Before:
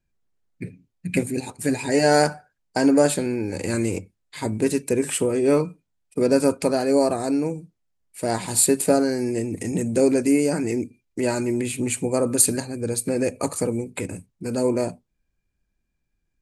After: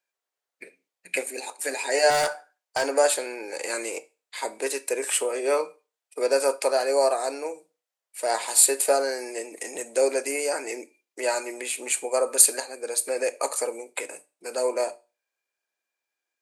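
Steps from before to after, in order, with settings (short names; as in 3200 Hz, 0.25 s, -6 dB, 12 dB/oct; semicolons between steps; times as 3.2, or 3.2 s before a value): HPF 510 Hz 24 dB/oct; 2.1–2.87 hard clip -20 dBFS, distortion -15 dB; reverb RT60 0.30 s, pre-delay 7 ms, DRR 13.5 dB; gain +1.5 dB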